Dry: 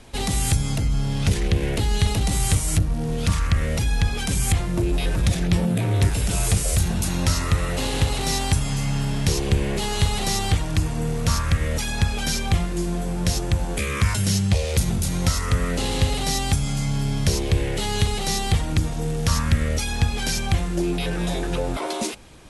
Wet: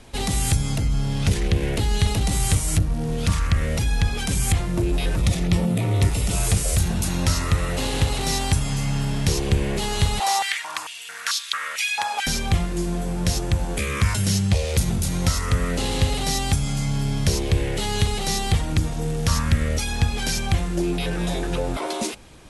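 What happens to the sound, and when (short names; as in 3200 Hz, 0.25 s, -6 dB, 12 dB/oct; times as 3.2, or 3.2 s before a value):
5.17–6.36 Butterworth band-stop 1600 Hz, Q 7.3
10.2–12.27 stepped high-pass 4.5 Hz 840–3600 Hz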